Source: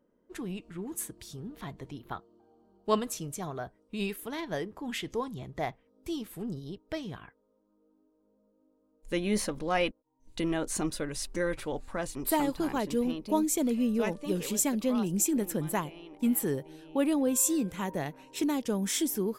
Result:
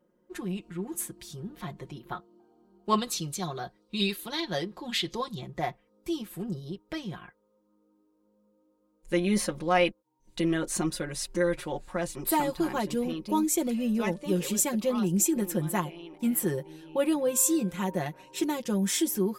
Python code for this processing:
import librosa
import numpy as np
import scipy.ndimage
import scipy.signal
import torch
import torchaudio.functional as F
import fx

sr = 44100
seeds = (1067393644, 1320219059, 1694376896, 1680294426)

y = fx.peak_eq(x, sr, hz=4100.0, db=13.0, octaves=0.7, at=(2.98, 5.41))
y = fx.highpass(y, sr, hz=44.0, slope=6)
y = y + 0.81 * np.pad(y, (int(5.6 * sr / 1000.0), 0))[:len(y)]